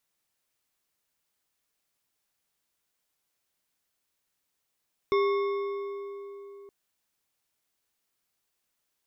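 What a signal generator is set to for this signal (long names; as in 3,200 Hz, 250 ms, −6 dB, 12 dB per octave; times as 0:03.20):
struck metal bar, length 1.57 s, lowest mode 400 Hz, decay 3.82 s, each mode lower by 6.5 dB, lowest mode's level −21 dB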